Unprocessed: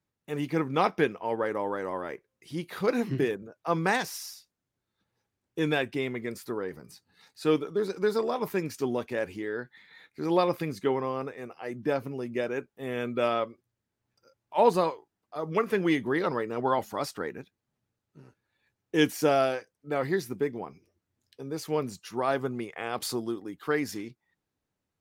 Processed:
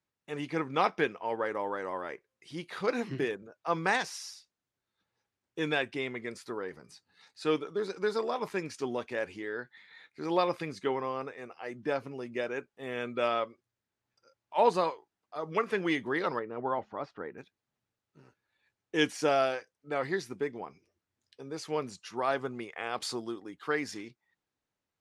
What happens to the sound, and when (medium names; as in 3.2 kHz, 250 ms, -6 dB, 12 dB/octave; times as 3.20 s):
16.39–17.38 s: tape spacing loss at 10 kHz 41 dB
whole clip: Bessel low-pass 7.1 kHz, order 8; bass shelf 430 Hz -8.5 dB